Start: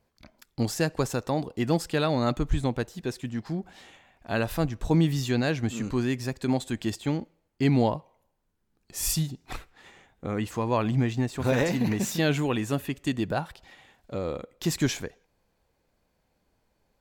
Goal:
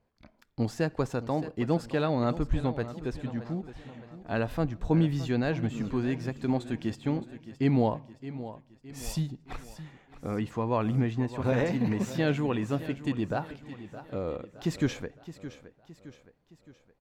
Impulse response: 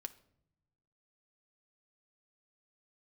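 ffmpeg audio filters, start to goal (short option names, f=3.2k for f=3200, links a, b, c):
-filter_complex "[0:a]lowpass=f=2k:p=1,aecho=1:1:617|1234|1851|2468:0.2|0.0938|0.0441|0.0207,asplit=2[a][b];[1:a]atrim=start_sample=2205[c];[b][c]afir=irnorm=-1:irlink=0,volume=-5dB[d];[a][d]amix=inputs=2:normalize=0,volume=-4.5dB"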